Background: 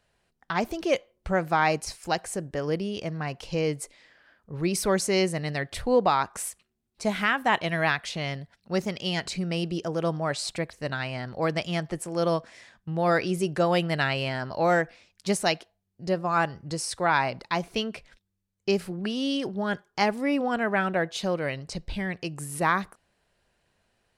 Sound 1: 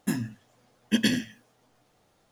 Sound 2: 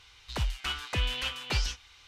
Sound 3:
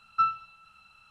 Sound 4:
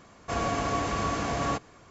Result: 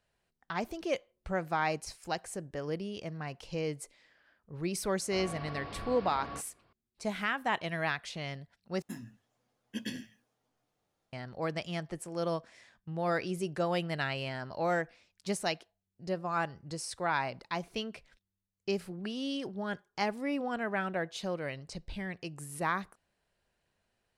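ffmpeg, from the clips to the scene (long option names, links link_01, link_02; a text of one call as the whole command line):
ffmpeg -i bed.wav -i cue0.wav -i cue1.wav -i cue2.wav -i cue3.wav -filter_complex "[0:a]volume=-8dB[link_01];[4:a]aresample=11025,aresample=44100[link_02];[link_01]asplit=2[link_03][link_04];[link_03]atrim=end=8.824[link_05];[1:a]atrim=end=2.31,asetpts=PTS-STARTPTS,volume=-15dB[link_06];[link_04]atrim=start=11.126[link_07];[link_02]atrim=end=1.9,asetpts=PTS-STARTPTS,volume=-14dB,afade=type=in:duration=0.004:curve=hsin,afade=type=out:start_time=1.896:duration=0.004:curve=hsin,adelay=4830[link_08];[link_05][link_06]acrossfade=duration=0.004:curve1=hsin:curve2=hsin[link_09];[link_09][link_07]acrossfade=duration=0.004:curve1=hsin:curve2=hsin[link_10];[link_10][link_08]amix=inputs=2:normalize=0" out.wav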